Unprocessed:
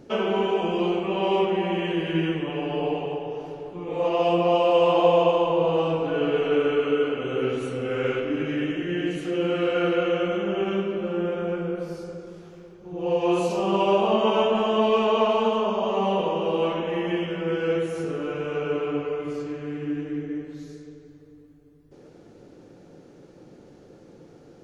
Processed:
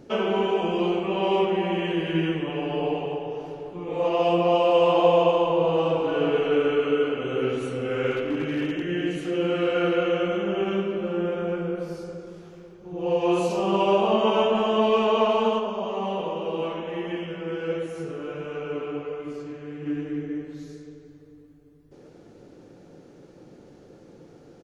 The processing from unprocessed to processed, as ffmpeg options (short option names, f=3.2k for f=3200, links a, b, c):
-filter_complex "[0:a]asplit=2[a][b];[b]afade=t=in:st=5.54:d=0.01,afade=t=out:st=6.07:d=0.01,aecho=0:1:310|620|930:0.473151|0.118288|0.029572[c];[a][c]amix=inputs=2:normalize=0,asettb=1/sr,asplit=3[d][e][f];[d]atrim=end=8.114[g];[e]atrim=start=8.11:end=8.87,asetpts=PTS-STARTPTS,afade=t=in:d=0.004:c=qsin,afade=t=out:st=0.756:d=0.004:c=qsin,asoftclip=type=hard:threshold=-21dB[h];[f]atrim=start=8.866[i];[g][h]acrossfade=d=0.004:c1=hsin:c2=qsin[j];[j][i]acrossfade=d=0.004:c1=qsin:c2=hsin,asplit=3[k][l][m];[k]afade=t=out:st=15.58:d=0.02[n];[l]flanger=delay=3.1:depth=6.7:regen=79:speed=1.4:shape=triangular,afade=t=in:st=15.58:d=0.02,afade=t=out:st=19.85:d=0.02[o];[m]afade=t=in:st=19.85:d=0.02[p];[n][o][p]amix=inputs=3:normalize=0"